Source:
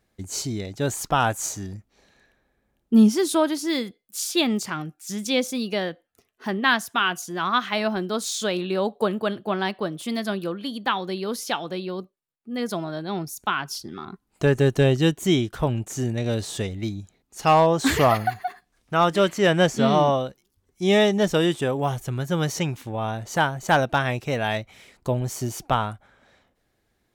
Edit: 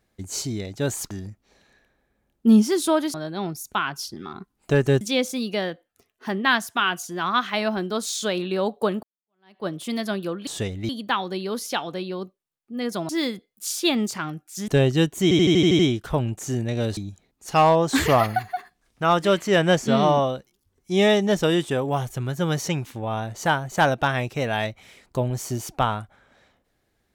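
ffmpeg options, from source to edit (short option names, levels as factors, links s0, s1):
-filter_complex "[0:a]asplit=17[s0][s1][s2][s3][s4][s5][s6][s7][s8][s9][s10][s11][s12][s13][s14][s15][s16];[s0]atrim=end=1.112[s17];[s1]atrim=start=1.578:end=3.612[s18];[s2]atrim=start=12.858:end=14.732[s19];[s3]atrim=start=5.198:end=9.22,asetpts=PTS-STARTPTS,afade=t=out:st=4.018:d=0.004:c=hsin[s20];[s4]atrim=start=9.22:end=10.662,asetpts=PTS-STARTPTS,afade=t=in:d=0.63:c=exp[s21];[s5]atrim=start=16.458:end=16.882[s22];[s6]atrim=start=10.658:end=12.862[s23];[s7]atrim=start=3.608:end=5.202[s24];[s8]atrim=start=14.728:end=15.362[s25];[s9]atrim=start=15.278:end=15.362[s26];[s10]atrim=start=15.278:end=15.362[s27];[s11]atrim=start=15.278:end=15.362[s28];[s12]atrim=start=15.278:end=15.362[s29];[s13]atrim=start=15.278:end=15.362[s30];[s14]atrim=start=15.278:end=15.362[s31];[s15]atrim=start=15.278:end=16.462[s32];[s16]atrim=start=16.878[s33];[s17][s18]acrossfade=d=0.004:c1=hsin:c2=hsin[s34];[s34][s19]acrossfade=d=0.004:c1=hsin:c2=hsin[s35];[s20][s21]concat=n=2:v=0:a=1[s36];[s35][s36]acrossfade=d=0.004:c1=hsin:c2=hsin[s37];[s37][s22]acrossfade=d=0.004:c1=hsin:c2=hsin[s38];[s38][s23]acrossfade=d=0.004:c1=hsin:c2=hsin[s39];[s39][s24]acrossfade=d=0.004:c1=hsin:c2=hsin[s40];[s40][s25]acrossfade=d=0.004:c1=hsin:c2=hsin[s41];[s41][s26]acrossfade=d=0.004:c1=hsin:c2=hsin[s42];[s42][s27]acrossfade=d=0.004:c1=hsin:c2=hsin[s43];[s43][s28]acrossfade=d=0.004:c1=hsin:c2=hsin[s44];[s44][s29]acrossfade=d=0.004:c1=hsin:c2=hsin[s45];[s45][s30]acrossfade=d=0.004:c1=hsin:c2=hsin[s46];[s46][s31]acrossfade=d=0.004:c1=hsin:c2=hsin[s47];[s47][s32]acrossfade=d=0.004:c1=hsin:c2=hsin[s48];[s48][s33]acrossfade=d=0.004:c1=hsin:c2=hsin"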